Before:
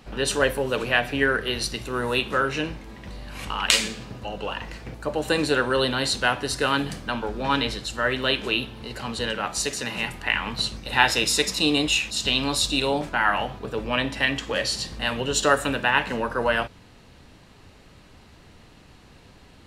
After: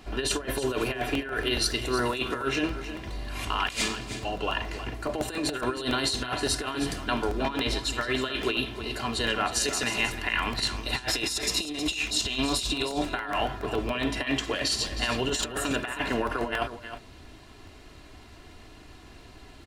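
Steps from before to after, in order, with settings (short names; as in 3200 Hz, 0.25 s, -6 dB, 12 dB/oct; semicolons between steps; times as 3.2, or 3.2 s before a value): negative-ratio compressor -26 dBFS, ratio -0.5; comb 2.9 ms, depth 56%; on a send: echo 0.315 s -11 dB; on the sum: crackling interface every 0.14 s, samples 64, repeat, from 0.87; gain -2.5 dB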